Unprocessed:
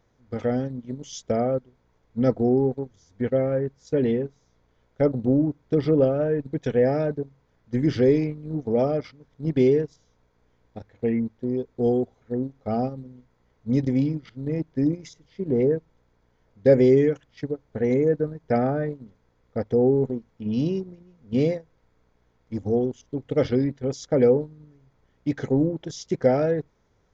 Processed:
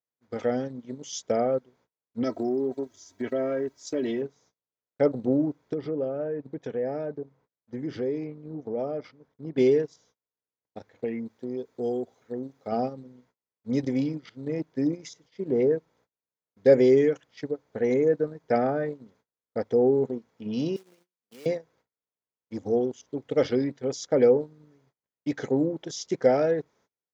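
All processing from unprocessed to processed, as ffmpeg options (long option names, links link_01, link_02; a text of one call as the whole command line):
ffmpeg -i in.wav -filter_complex "[0:a]asettb=1/sr,asplit=3[link_01][link_02][link_03];[link_01]atrim=end=2.234[link_04];[link_02]atrim=start=2.23:end=4.22,asetpts=PTS-STARTPTS,afade=type=in:duration=0.004:curve=qsin,afade=type=out:start_time=1.986:duration=0.004:curve=qsin,highshelf=frequency=4700:gain=10,aecho=1:1:3.1:0.75,atrim=end_sample=87759,acompressor=threshold=-23dB:ratio=3:attack=3.2:release=140:knee=1:detection=peak[link_05];[link_03]atrim=start=4.216[link_06];[link_04][link_05]acrossfade=duration=0.004:curve1=hsin:curve2=qsin[link_07];[link_07][link_06]acrossfade=duration=0.004:curve1=qsin:curve2=hsin,asettb=1/sr,asplit=3[link_08][link_09][link_10];[link_08]atrim=end=5.734[link_11];[link_09]atrim=start=5.73:end=9.58,asetpts=PTS-STARTPTS,afade=type=in:duration=0.004:curve=qsin,afade=type=out:start_time=3.846:duration=0.004:curve=qsin,highshelf=frequency=2200:gain=-11.5,acompressor=threshold=-30dB:ratio=2:attack=3.2:release=140:knee=1:detection=peak[link_12];[link_10]atrim=start=9.576[link_13];[link_11][link_12]acrossfade=duration=0.004:curve1=hsin:curve2=qsin[link_14];[link_14][link_13]acrossfade=duration=0.004:curve1=qsin:curve2=hsin,asettb=1/sr,asplit=3[link_15][link_16][link_17];[link_15]atrim=end=11.044[link_18];[link_16]atrim=start=11.04:end=12.72,asetpts=PTS-STARTPTS,afade=type=in:duration=0.004:curve=qsin,afade=type=out:start_time=1.676:duration=0.004:curve=qsin,highpass=57,highshelf=frequency=4500:gain=6,acompressor=threshold=-32dB:ratio=1.5:attack=3.2:release=140:knee=1:detection=peak[link_19];[link_17]atrim=start=12.716[link_20];[link_18][link_19]acrossfade=duration=0.004:curve1=hsin:curve2=qsin[link_21];[link_21][link_20]acrossfade=duration=0.004:curve1=qsin:curve2=hsin,asettb=1/sr,asplit=3[link_22][link_23][link_24];[link_22]atrim=end=20.764[link_25];[link_23]atrim=start=20.76:end=21.46,asetpts=PTS-STARTPTS,afade=type=in:duration=0.004:curve=qsin,afade=type=out:start_time=0.696:duration=0.004:curve=qsin,highpass=frequency=1100:poles=1,acrusher=bits=2:mode=log:mix=0:aa=0.000001,acompressor=threshold=-49dB:ratio=2.5:attack=3.2:release=140:knee=1:detection=peak[link_26];[link_24]atrim=start=21.456[link_27];[link_25][link_26]acrossfade=duration=0.004:curve1=hsin:curve2=qsin[link_28];[link_28][link_27]acrossfade=duration=0.004:curve1=qsin:curve2=hsin,agate=range=-31dB:threshold=-57dB:ratio=16:detection=peak,highpass=110,bass=frequency=250:gain=-8,treble=frequency=4000:gain=3" out.wav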